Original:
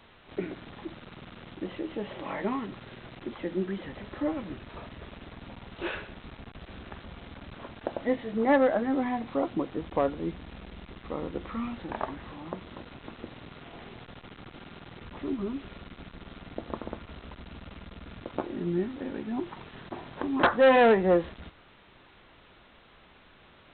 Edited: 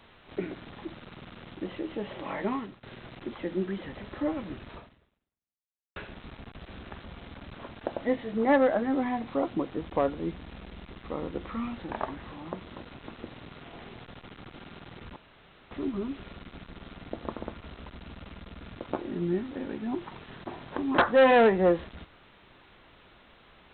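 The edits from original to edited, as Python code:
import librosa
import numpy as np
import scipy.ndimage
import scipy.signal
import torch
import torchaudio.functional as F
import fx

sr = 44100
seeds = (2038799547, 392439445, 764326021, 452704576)

y = fx.edit(x, sr, fx.fade_out_to(start_s=2.56, length_s=0.27, floor_db=-21.5),
    fx.fade_out_span(start_s=4.74, length_s=1.22, curve='exp'),
    fx.insert_room_tone(at_s=15.16, length_s=0.55), tone=tone)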